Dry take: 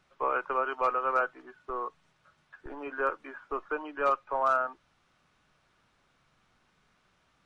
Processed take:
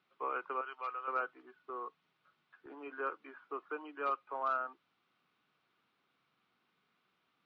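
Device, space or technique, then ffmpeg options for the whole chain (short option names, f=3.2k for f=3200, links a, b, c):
kitchen radio: -filter_complex "[0:a]asettb=1/sr,asplit=3[a][b][c];[a]atrim=end=0.614[d];[b]atrim=start=0.61:end=1.08,asetpts=PTS-STARTPTS,afade=t=in:d=0.004:c=qsin,afade=t=out:st=0.466:d=0.004:c=qsin,highpass=f=1.5k:p=1[e];[c]atrim=start=1.076[f];[d][e]acrossfade=d=0.004:c1=hsin:c2=qsin[g];[g][f]acrossfade=d=0.004:c1=qsin:c2=hsin,highpass=220,equalizer=f=590:t=q:w=4:g=-8,equalizer=f=890:t=q:w=4:g=-4,equalizer=f=1.7k:t=q:w=4:g=-5,lowpass=f=4.4k:w=0.5412,lowpass=f=4.4k:w=1.3066,volume=-6dB"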